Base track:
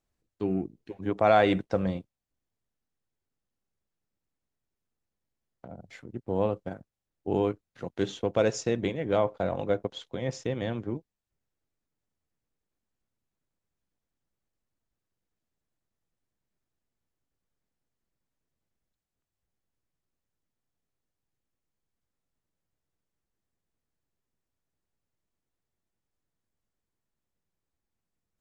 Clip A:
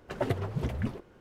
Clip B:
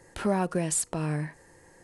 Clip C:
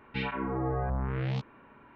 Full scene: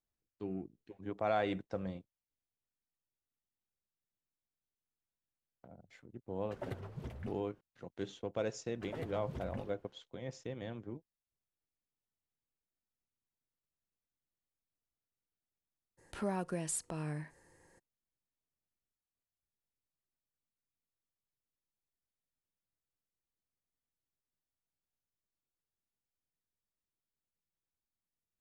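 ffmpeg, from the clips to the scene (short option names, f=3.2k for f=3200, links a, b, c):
-filter_complex "[1:a]asplit=2[a][b];[0:a]volume=-12dB[c];[b]alimiter=limit=-20dB:level=0:latency=1:release=17[d];[a]atrim=end=1.2,asetpts=PTS-STARTPTS,volume=-13dB,afade=t=in:d=0.004:c=hsin,afade=t=out:st=1.196:d=0.004:c=hsin,adelay=6410[e];[d]atrim=end=1.2,asetpts=PTS-STARTPTS,volume=-12dB,afade=t=in:d=0.004:c=hsin,afade=t=out:st=1.196:d=0.004:c=hsin,adelay=8720[f];[2:a]atrim=end=1.83,asetpts=PTS-STARTPTS,volume=-10dB,afade=t=in:d=0.02,afade=t=out:st=1.81:d=0.02,adelay=15970[g];[c][e][f][g]amix=inputs=4:normalize=0"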